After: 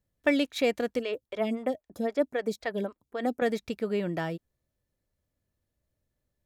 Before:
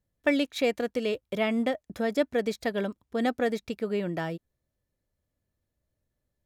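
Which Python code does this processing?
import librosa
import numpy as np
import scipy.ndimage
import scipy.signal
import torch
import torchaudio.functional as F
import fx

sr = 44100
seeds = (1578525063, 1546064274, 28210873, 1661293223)

y = fx.stagger_phaser(x, sr, hz=3.8, at=(0.99, 3.42))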